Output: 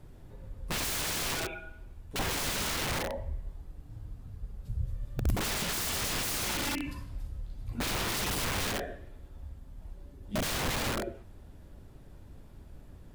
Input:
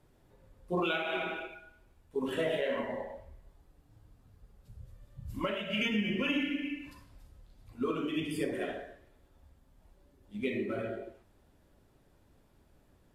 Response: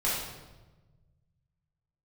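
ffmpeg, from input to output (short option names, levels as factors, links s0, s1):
-af "aeval=exprs='(mod(59.6*val(0)+1,2)-1)/59.6':c=same,lowshelf=f=180:g=11,volume=2.24"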